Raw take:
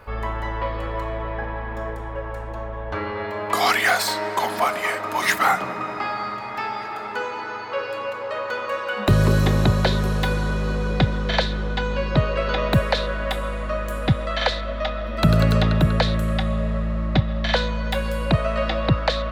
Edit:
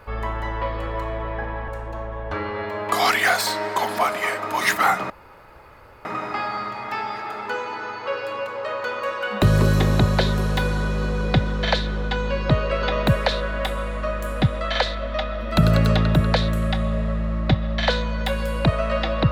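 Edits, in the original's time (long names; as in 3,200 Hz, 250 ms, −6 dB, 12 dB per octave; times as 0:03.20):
0:01.68–0:02.29: remove
0:05.71: splice in room tone 0.95 s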